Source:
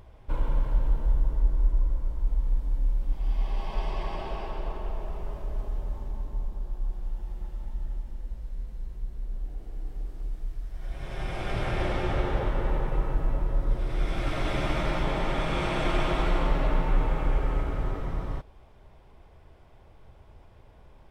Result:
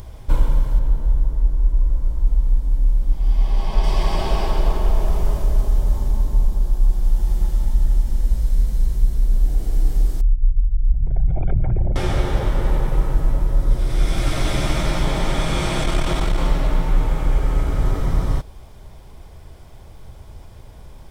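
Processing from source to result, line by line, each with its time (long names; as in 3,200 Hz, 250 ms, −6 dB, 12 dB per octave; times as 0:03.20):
0:00.79–0:03.84: high-shelf EQ 3,500 Hz −7 dB
0:10.21–0:11.96: spectral envelope exaggerated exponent 3
0:15.80–0:16.39: saturating transformer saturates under 64 Hz
whole clip: bass and treble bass +5 dB, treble +14 dB; notch filter 2,700 Hz, Q 18; speech leveller; level +5.5 dB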